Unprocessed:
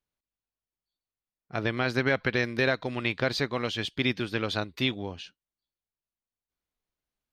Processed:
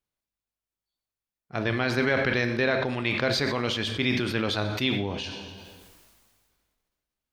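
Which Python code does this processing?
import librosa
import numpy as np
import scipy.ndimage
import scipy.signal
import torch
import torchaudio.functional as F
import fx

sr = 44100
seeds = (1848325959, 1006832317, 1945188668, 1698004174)

y = fx.high_shelf(x, sr, hz=7000.0, db=-10.5, at=(2.46, 2.89))
y = fx.rev_plate(y, sr, seeds[0], rt60_s=0.83, hf_ratio=0.85, predelay_ms=0, drr_db=9.0)
y = fx.sustainer(y, sr, db_per_s=29.0)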